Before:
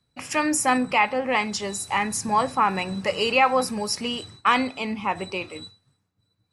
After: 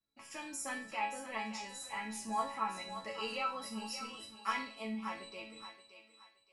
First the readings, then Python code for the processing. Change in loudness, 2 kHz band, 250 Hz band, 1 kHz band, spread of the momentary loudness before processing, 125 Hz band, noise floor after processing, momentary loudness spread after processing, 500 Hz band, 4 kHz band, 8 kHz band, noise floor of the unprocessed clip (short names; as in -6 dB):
-16.5 dB, -16.5 dB, -17.0 dB, -16.0 dB, 9 LU, under -15 dB, -70 dBFS, 12 LU, -19.0 dB, -15.5 dB, -16.0 dB, -73 dBFS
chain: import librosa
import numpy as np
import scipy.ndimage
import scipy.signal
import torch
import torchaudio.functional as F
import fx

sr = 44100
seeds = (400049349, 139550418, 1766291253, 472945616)

y = fx.resonator_bank(x, sr, root=57, chord='major', decay_s=0.4)
y = fx.echo_thinned(y, sr, ms=573, feedback_pct=32, hz=550.0, wet_db=-9.5)
y = y * 10.0 ** (2.5 / 20.0)